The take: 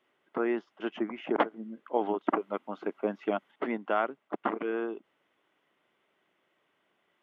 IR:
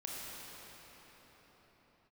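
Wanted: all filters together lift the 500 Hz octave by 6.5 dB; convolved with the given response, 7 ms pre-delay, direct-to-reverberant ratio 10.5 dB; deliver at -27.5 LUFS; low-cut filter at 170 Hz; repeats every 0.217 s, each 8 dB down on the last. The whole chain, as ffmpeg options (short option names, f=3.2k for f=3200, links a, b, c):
-filter_complex "[0:a]highpass=170,equalizer=f=500:t=o:g=8.5,aecho=1:1:217|434|651|868|1085:0.398|0.159|0.0637|0.0255|0.0102,asplit=2[a][b];[1:a]atrim=start_sample=2205,adelay=7[c];[b][c]afir=irnorm=-1:irlink=0,volume=-11.5dB[d];[a][d]amix=inputs=2:normalize=0"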